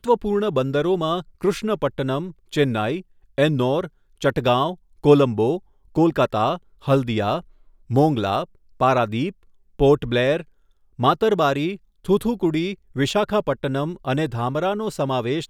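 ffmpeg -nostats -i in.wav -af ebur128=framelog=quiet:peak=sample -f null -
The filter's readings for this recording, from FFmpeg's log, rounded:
Integrated loudness:
  I:         -21.7 LUFS
  Threshold: -32.0 LUFS
Loudness range:
  LRA:         2.7 LU
  Threshold: -41.8 LUFS
  LRA low:   -23.2 LUFS
  LRA high:  -20.5 LUFS
Sample peak:
  Peak:       -2.2 dBFS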